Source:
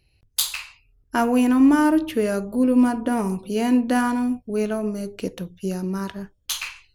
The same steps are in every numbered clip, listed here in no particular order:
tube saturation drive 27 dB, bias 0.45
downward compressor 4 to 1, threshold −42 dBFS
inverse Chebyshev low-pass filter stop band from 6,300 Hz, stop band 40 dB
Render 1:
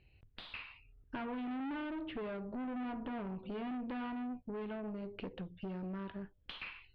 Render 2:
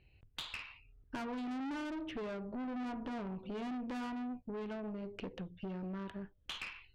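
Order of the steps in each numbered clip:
tube saturation, then downward compressor, then inverse Chebyshev low-pass filter
inverse Chebyshev low-pass filter, then tube saturation, then downward compressor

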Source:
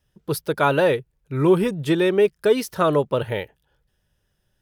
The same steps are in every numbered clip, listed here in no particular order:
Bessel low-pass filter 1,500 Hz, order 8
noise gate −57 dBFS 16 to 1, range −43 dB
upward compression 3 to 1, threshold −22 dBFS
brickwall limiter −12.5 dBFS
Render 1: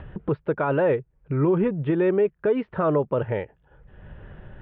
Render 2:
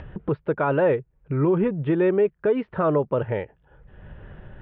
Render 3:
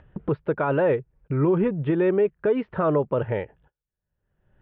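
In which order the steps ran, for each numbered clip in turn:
brickwall limiter, then upward compression, then Bessel low-pass filter, then noise gate
Bessel low-pass filter, then brickwall limiter, then upward compression, then noise gate
noise gate, then brickwall limiter, then Bessel low-pass filter, then upward compression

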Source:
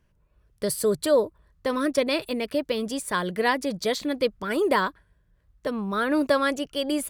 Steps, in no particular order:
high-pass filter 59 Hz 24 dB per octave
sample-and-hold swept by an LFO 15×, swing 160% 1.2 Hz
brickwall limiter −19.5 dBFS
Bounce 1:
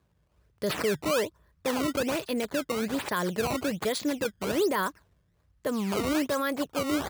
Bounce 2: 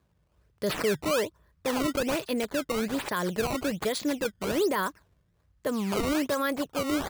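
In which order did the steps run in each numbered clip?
brickwall limiter, then sample-and-hold swept by an LFO, then high-pass filter
high-pass filter, then brickwall limiter, then sample-and-hold swept by an LFO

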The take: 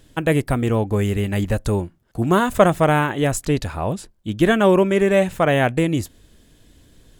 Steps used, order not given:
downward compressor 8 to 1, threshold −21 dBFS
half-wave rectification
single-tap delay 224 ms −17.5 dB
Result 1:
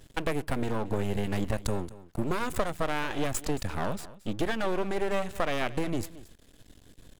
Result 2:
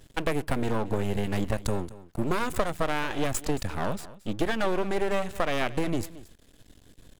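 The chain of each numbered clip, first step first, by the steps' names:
downward compressor, then half-wave rectification, then single-tap delay
half-wave rectification, then downward compressor, then single-tap delay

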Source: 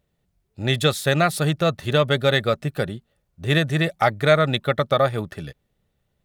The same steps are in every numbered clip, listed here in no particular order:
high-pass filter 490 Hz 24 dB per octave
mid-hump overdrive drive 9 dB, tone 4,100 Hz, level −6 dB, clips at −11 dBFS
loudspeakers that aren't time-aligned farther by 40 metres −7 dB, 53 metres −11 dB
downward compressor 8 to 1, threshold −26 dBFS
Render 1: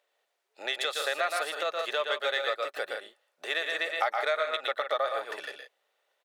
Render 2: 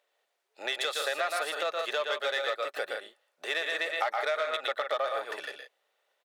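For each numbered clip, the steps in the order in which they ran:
loudspeakers that aren't time-aligned, then downward compressor, then mid-hump overdrive, then high-pass filter
loudspeakers that aren't time-aligned, then mid-hump overdrive, then downward compressor, then high-pass filter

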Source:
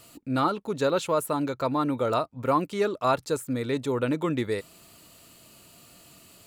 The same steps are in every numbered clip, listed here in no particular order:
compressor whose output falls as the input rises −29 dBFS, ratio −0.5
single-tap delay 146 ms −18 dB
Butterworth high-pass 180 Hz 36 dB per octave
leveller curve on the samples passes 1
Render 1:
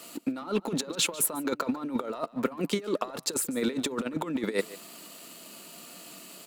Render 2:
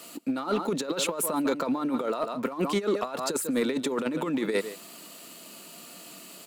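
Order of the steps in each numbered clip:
Butterworth high-pass, then leveller curve on the samples, then compressor whose output falls as the input rises, then single-tap delay
single-tap delay, then compressor whose output falls as the input rises, then Butterworth high-pass, then leveller curve on the samples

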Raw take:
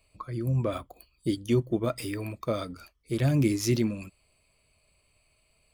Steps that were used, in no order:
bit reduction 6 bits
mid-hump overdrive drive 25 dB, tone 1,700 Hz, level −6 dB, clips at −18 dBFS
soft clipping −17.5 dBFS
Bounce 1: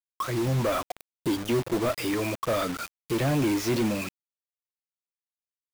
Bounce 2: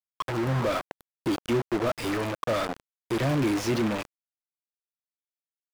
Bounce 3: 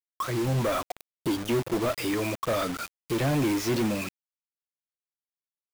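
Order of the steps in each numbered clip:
soft clipping, then mid-hump overdrive, then bit reduction
soft clipping, then bit reduction, then mid-hump overdrive
mid-hump overdrive, then soft clipping, then bit reduction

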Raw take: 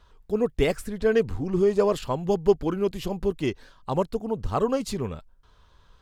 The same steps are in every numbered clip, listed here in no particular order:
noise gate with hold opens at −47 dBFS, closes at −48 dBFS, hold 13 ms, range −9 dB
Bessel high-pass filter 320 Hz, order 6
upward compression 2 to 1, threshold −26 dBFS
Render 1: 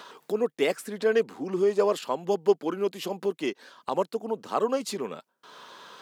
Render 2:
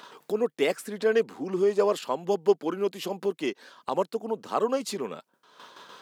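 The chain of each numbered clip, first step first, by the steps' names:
Bessel high-pass filter, then upward compression, then noise gate with hold
noise gate with hold, then Bessel high-pass filter, then upward compression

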